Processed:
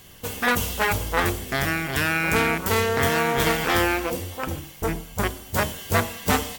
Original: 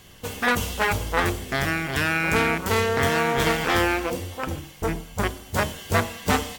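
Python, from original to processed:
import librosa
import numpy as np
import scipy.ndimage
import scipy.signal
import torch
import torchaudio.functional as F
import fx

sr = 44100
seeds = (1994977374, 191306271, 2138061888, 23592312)

y = fx.high_shelf(x, sr, hz=12000.0, db=10.5)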